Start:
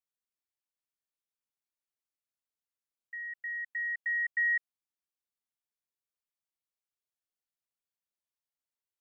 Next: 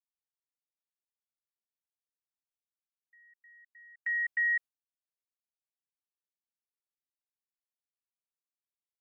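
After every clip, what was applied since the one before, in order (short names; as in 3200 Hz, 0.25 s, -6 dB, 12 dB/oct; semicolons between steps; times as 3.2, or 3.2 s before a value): gate with hold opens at -28 dBFS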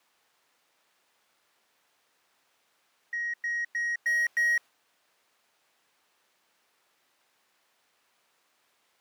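overdrive pedal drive 36 dB, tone 1600 Hz, clips at -24 dBFS; gain +5.5 dB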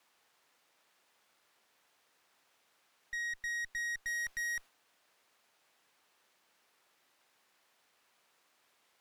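tube stage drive 35 dB, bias 0.4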